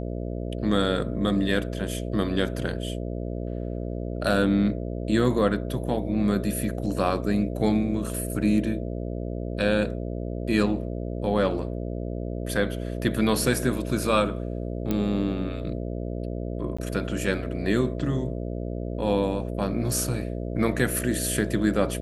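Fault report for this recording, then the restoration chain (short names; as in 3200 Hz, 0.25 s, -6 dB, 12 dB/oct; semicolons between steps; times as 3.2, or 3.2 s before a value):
buzz 60 Hz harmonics 11 -31 dBFS
14.91 pop -13 dBFS
16.77–16.79 gap 15 ms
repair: de-click; de-hum 60 Hz, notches 11; interpolate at 16.77, 15 ms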